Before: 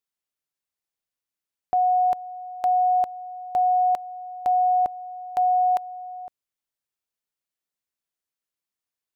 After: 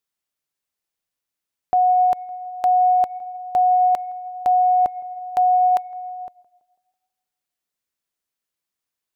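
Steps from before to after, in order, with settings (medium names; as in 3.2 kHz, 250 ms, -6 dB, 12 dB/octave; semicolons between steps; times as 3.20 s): tape echo 163 ms, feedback 53%, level -21 dB, low-pass 1.3 kHz; trim +4 dB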